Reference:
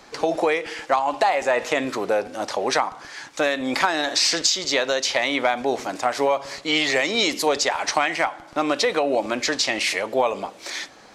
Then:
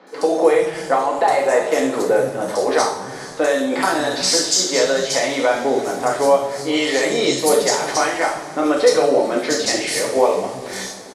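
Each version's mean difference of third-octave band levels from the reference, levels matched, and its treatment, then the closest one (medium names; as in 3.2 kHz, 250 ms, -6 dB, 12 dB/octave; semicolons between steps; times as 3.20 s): 6.5 dB: fifteen-band graphic EQ 160 Hz +9 dB, 400 Hz +7 dB, 2.5 kHz -6 dB, 10 kHz +11 dB; three bands offset in time mids, highs, lows 70/390 ms, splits 200/3600 Hz; two-slope reverb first 0.55 s, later 3.8 s, from -18 dB, DRR -2 dB; trim -1 dB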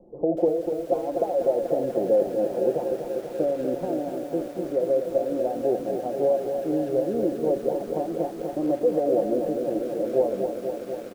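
12.0 dB: steep low-pass 600 Hz 36 dB/octave; comb 5.7 ms, depth 50%; bit-crushed delay 244 ms, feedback 80%, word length 8-bit, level -6.5 dB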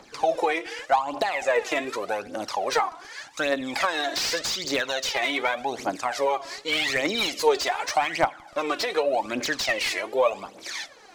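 3.5 dB: bass shelf 140 Hz -8 dB; phaser 0.85 Hz, delay 3.1 ms, feedback 68%; slew-rate limiter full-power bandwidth 460 Hz; trim -5 dB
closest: third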